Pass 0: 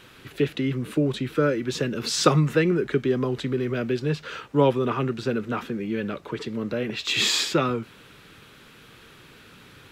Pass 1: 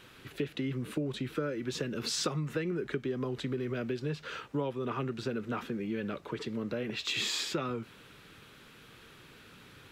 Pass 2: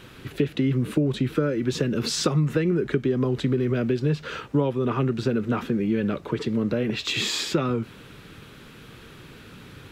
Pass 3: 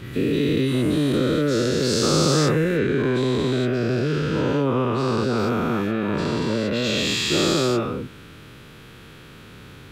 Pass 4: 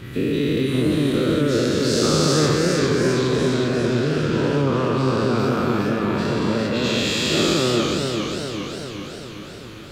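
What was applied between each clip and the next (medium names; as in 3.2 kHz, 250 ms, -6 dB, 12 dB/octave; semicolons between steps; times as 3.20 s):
compression 5:1, threshold -25 dBFS, peak gain reduction 12.5 dB; trim -5 dB
bass shelf 430 Hz +7.5 dB; trim +6 dB
every event in the spectrogram widened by 480 ms; trim -4.5 dB
modulated delay 404 ms, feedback 62%, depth 116 cents, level -5 dB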